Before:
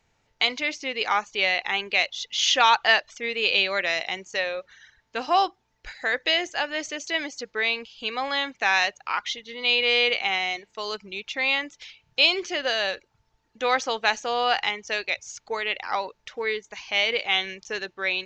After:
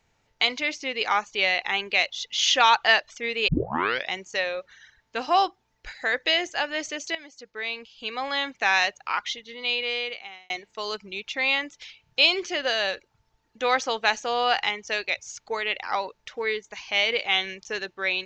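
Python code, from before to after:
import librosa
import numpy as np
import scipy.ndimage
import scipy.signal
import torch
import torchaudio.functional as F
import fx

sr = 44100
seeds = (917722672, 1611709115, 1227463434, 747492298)

y = fx.edit(x, sr, fx.tape_start(start_s=3.48, length_s=0.62),
    fx.fade_in_from(start_s=7.15, length_s=1.39, floor_db=-16.0),
    fx.fade_out_span(start_s=9.18, length_s=1.32), tone=tone)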